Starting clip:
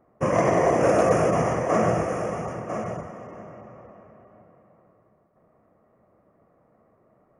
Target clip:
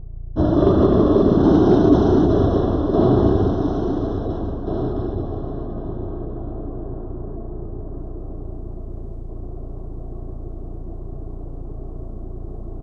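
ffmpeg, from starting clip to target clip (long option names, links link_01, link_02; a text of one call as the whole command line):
ffmpeg -i in.wav -af "highshelf=frequency=3400:gain=-11,areverse,acompressor=mode=upward:threshold=-28dB:ratio=2.5,areverse,aeval=exprs='val(0)+0.0141*(sin(2*PI*50*n/s)+sin(2*PI*2*50*n/s)/2+sin(2*PI*3*50*n/s)/3+sin(2*PI*4*50*n/s)/4+sin(2*PI*5*50*n/s)/5)':channel_layout=same,aecho=1:1:81:0.355,asetrate=25442,aresample=44100,volume=5.5dB" out.wav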